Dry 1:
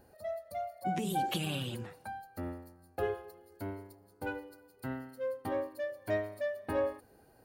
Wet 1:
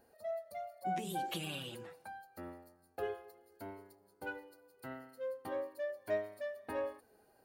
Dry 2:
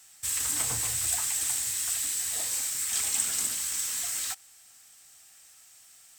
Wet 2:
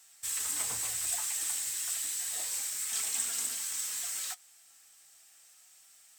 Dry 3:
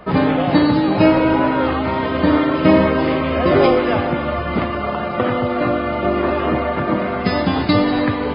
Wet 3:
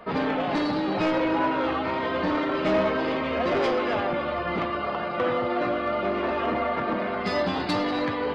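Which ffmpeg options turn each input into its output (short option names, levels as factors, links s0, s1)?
-af "asoftclip=type=tanh:threshold=0.224,flanger=delay=4.3:depth=1.8:regen=63:speed=0.3:shape=sinusoidal,bass=f=250:g=-8,treble=f=4000:g=0"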